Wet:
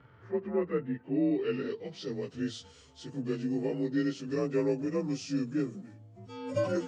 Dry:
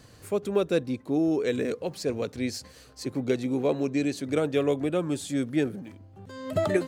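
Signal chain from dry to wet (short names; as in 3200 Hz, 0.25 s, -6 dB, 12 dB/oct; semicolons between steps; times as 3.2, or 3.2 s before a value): inharmonic rescaling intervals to 88%; harmonic-percussive split percussive -8 dB; low-pass sweep 1600 Hz -> 7300 Hz, 0.75–2.38; gain -2 dB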